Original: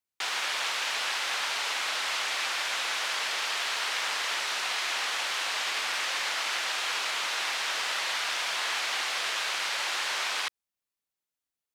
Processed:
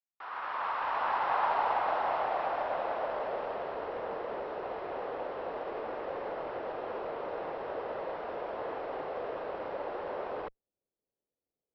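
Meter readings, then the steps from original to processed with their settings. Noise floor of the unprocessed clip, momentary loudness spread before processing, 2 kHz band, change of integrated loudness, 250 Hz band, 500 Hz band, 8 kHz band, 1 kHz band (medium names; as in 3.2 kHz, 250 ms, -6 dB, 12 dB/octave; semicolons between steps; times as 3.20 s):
under -85 dBFS, 0 LU, -13.0 dB, -6.5 dB, +9.0 dB, +9.5 dB, under -40 dB, +2.0 dB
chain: fade-in on the opening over 1.48 s; band-stop 2.3 kHz, Q 28; Chebyshev shaper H 4 -31 dB, 8 -37 dB, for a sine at -17 dBFS; low-pass sweep 1.2 kHz -> 490 Hz, 0.10–3.94 s; Chebyshev low-pass 5.7 kHz, order 10; trim +5.5 dB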